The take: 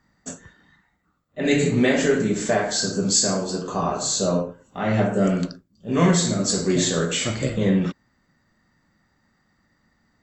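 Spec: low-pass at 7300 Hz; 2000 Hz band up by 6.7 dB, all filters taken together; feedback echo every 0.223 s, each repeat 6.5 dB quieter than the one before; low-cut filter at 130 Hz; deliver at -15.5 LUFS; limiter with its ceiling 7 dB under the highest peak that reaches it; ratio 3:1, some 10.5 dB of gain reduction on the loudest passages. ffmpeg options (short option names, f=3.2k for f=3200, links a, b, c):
-af "highpass=130,lowpass=7.3k,equalizer=f=2k:t=o:g=8,acompressor=threshold=-27dB:ratio=3,alimiter=limit=-20dB:level=0:latency=1,aecho=1:1:223|446|669|892|1115|1338:0.473|0.222|0.105|0.0491|0.0231|0.0109,volume=13.5dB"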